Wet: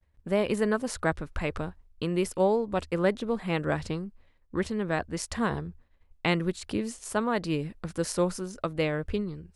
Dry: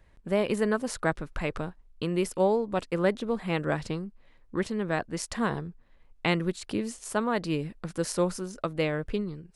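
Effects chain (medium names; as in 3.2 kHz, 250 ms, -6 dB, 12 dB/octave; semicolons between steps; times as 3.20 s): expander -49 dBFS; peaking EQ 76 Hz +13.5 dB 0.33 oct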